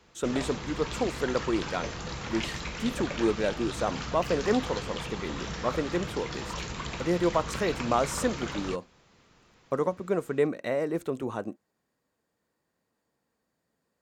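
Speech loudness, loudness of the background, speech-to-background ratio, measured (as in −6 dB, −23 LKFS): −30.5 LKFS, −36.0 LKFS, 5.5 dB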